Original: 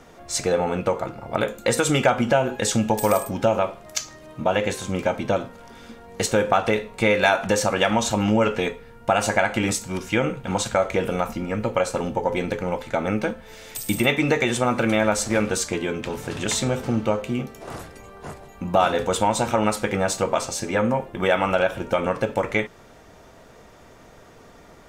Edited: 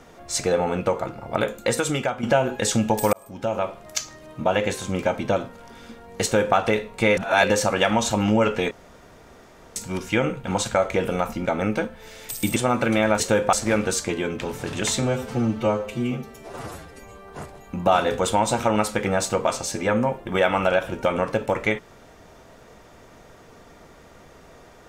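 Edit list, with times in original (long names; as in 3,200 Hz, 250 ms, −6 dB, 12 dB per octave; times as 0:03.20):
0:01.55–0:02.23: fade out, to −10.5 dB
0:03.13–0:03.81: fade in
0:06.23–0:06.56: duplicate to 0:15.17
0:07.17–0:07.50: reverse
0:08.71–0:09.76: fill with room tone
0:11.46–0:12.92: remove
0:14.02–0:14.53: remove
0:16.66–0:18.18: time-stretch 1.5×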